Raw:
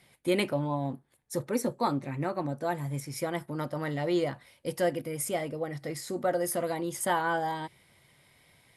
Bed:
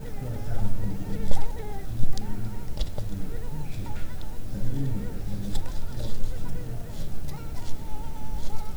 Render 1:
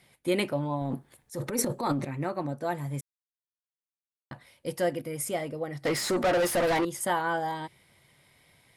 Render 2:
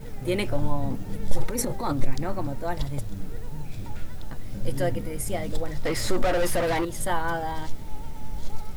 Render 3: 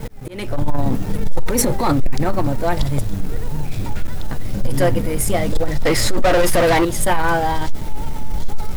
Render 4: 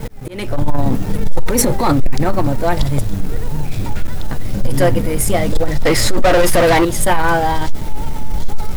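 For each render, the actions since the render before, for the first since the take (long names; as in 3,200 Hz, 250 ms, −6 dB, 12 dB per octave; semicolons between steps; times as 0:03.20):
0:00.81–0:02.05: transient designer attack −6 dB, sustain +11 dB; 0:03.01–0:04.31: silence; 0:05.85–0:06.85: mid-hump overdrive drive 27 dB, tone 3,600 Hz, clips at −18 dBFS
mix in bed −2 dB
leveller curve on the samples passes 3; volume swells 433 ms
level +3 dB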